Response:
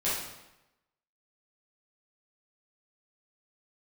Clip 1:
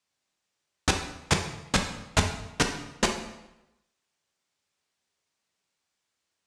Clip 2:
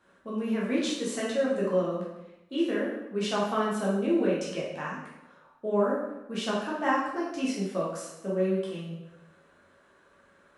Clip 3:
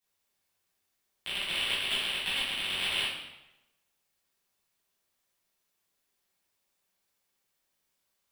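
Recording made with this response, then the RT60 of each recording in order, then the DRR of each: 3; 0.95, 0.95, 0.95 seconds; 3.0, −6.5, −10.5 decibels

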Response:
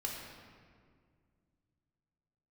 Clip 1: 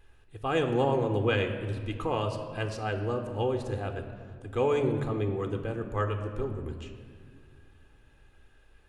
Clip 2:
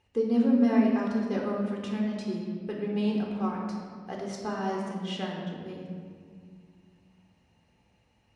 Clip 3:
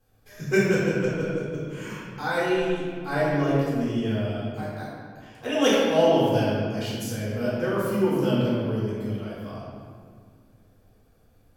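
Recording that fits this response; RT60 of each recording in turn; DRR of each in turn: 2; 2.1, 2.0, 2.0 seconds; 6.0, −2.0, −9.5 decibels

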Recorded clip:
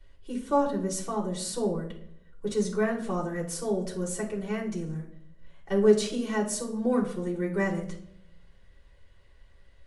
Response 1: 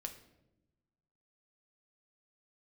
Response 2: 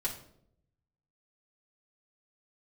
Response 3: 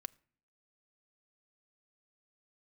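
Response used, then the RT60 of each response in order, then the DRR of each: 2; 0.95, 0.70, 0.50 seconds; 4.5, −5.5, 13.5 decibels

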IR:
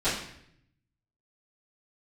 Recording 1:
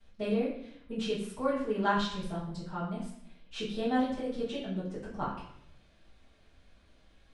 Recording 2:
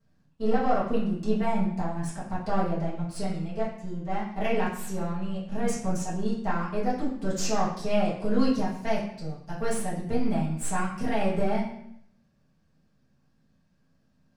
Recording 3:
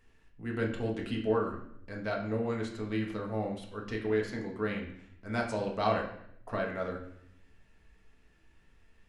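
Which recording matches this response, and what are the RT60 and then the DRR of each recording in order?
1; 0.70, 0.70, 0.70 seconds; −16.5, −10.5, −1.0 decibels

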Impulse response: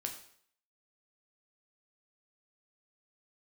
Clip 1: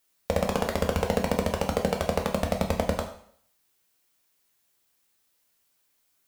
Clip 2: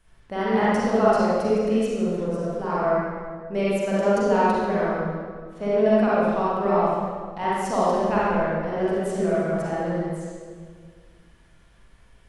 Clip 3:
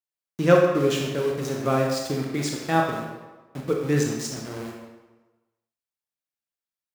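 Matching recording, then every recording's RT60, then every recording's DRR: 1; 0.60, 1.8, 1.2 seconds; 2.5, −8.5, −0.5 decibels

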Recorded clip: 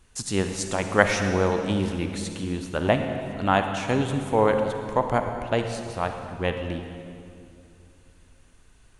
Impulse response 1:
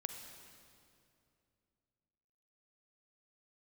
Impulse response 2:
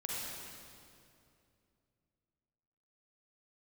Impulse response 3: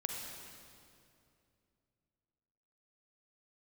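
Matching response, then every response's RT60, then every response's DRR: 1; 2.6, 2.6, 2.6 seconds; 5.5, −5.0, 1.0 decibels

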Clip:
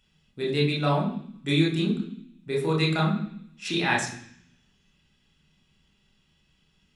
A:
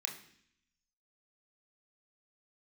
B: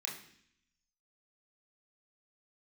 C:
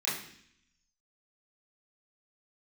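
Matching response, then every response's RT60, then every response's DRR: B; 0.65, 0.65, 0.65 seconds; 1.5, −2.5, −10.5 decibels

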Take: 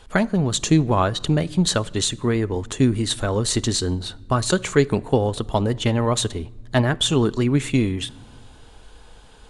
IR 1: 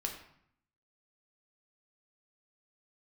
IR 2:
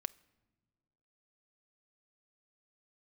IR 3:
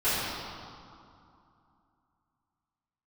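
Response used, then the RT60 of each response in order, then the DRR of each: 2; 0.65 s, non-exponential decay, 2.6 s; 1.5, 15.0, −17.5 decibels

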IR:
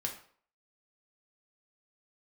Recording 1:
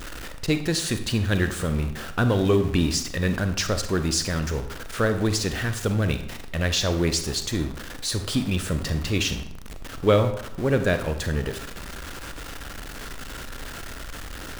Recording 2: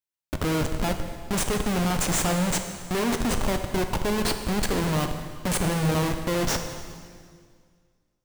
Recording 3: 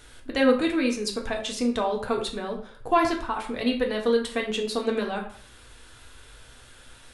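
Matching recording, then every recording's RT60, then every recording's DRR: 3; 0.75, 2.0, 0.50 seconds; 8.0, 5.5, 0.5 decibels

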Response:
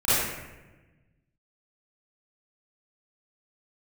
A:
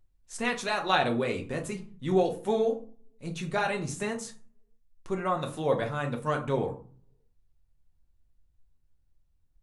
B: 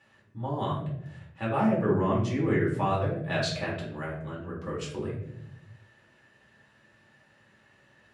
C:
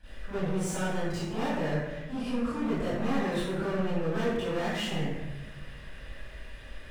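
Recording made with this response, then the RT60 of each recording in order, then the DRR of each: C; 0.45, 0.80, 1.1 seconds; 2.0, −6.5, −16.0 decibels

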